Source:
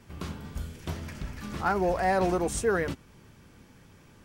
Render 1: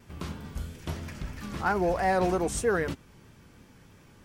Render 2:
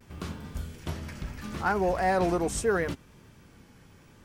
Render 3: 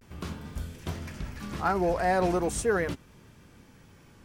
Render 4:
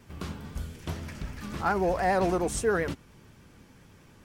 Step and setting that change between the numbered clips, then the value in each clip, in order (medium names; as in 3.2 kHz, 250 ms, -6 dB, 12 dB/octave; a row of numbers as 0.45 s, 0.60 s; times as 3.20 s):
vibrato, rate: 3.1 Hz, 0.73 Hz, 0.4 Hz, 10 Hz